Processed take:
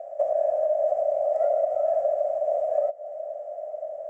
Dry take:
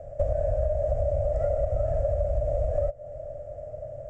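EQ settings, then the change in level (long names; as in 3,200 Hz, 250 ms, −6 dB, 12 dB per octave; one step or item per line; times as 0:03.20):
high-pass with resonance 710 Hz, resonance Q 4.5
notch filter 1,500 Hz, Q 22
−2.5 dB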